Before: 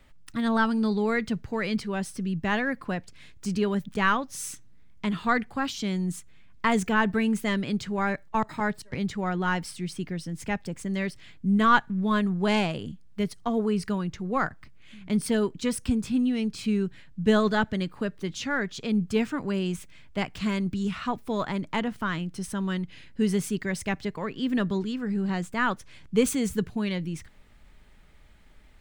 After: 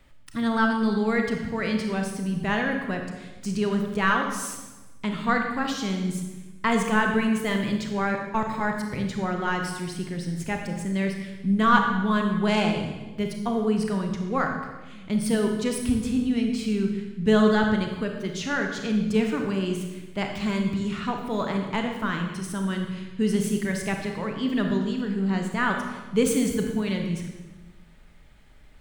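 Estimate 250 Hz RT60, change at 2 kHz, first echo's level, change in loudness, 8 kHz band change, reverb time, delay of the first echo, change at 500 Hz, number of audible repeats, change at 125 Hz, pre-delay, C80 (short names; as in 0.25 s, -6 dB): 1.4 s, +2.0 dB, none, +2.0 dB, +2.0 dB, 1.2 s, none, +2.5 dB, none, +2.0 dB, 28 ms, 6.5 dB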